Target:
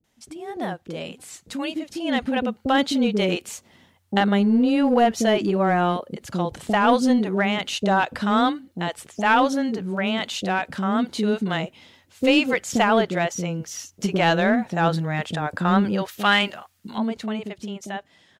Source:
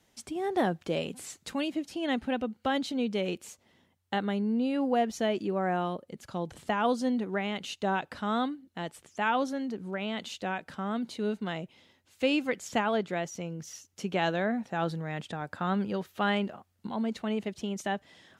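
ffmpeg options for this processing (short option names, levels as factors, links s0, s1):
-filter_complex "[0:a]dynaudnorm=f=440:g=9:m=4.22,acrossover=split=440[s0][s1];[s1]adelay=40[s2];[s0][s2]amix=inputs=2:normalize=0,asplit=2[s3][s4];[s4]aeval=exprs='clip(val(0),-1,0.15)':c=same,volume=0.562[s5];[s3][s5]amix=inputs=2:normalize=0,asettb=1/sr,asplit=3[s6][s7][s8];[s6]atrim=end=16.084[s9];[s7]atrim=start=16.08:end=16.98,asetpts=PTS-STARTPTS,afade=t=in:d=0.004:c=qsin,afade=t=out:st=0.896:d=0.004:c=qsin,tiltshelf=f=970:g=-7[s10];[s8]atrim=start=16.976[s11];[s9][s10]acrossfade=d=0.004:c1=hsin:c2=qsin[s12];[s12][s11]acrossfade=d=0.004:c1=qsin:c2=hsin,volume=0.596"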